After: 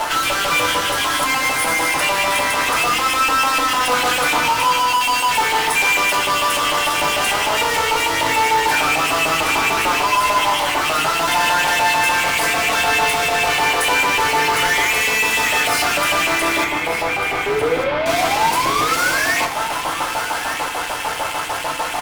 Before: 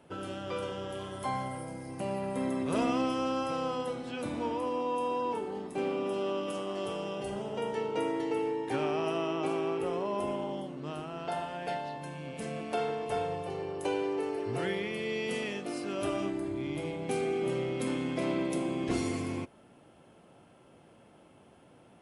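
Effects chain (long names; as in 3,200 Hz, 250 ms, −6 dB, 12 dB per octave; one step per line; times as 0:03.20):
0:05.01–0:06.17: flat-topped bell 570 Hz −9 dB 2.8 octaves
in parallel at −2 dB: downward compressor, threshold −40 dBFS, peak gain reduction 14 dB
on the sum: brickwall limiter −26.5 dBFS, peak gain reduction 9 dB
auto-filter high-pass saw up 6.7 Hz 760–2,800 Hz
0:17.46–0:19.37: sound drawn into the spectrogram rise 400–1,900 Hz −41 dBFS
fuzz pedal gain 60 dB, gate −60 dBFS
0:16.64–0:18.06: high-frequency loss of the air 380 metres
on a send: single-tap delay 1,197 ms −11 dB
on the sum: feedback delay network reverb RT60 0.57 s, low-frequency decay 1.25×, high-frequency decay 0.45×, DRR 1.5 dB
level −6 dB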